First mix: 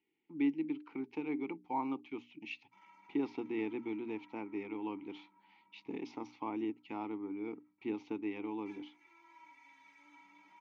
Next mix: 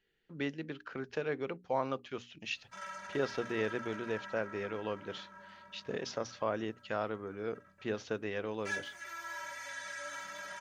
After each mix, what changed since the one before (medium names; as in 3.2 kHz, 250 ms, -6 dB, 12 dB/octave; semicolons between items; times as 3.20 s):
speech -10.5 dB; master: remove vowel filter u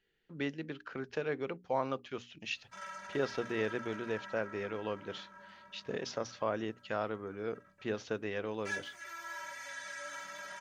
reverb: off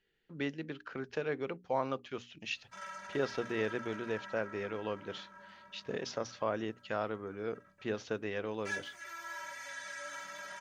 no change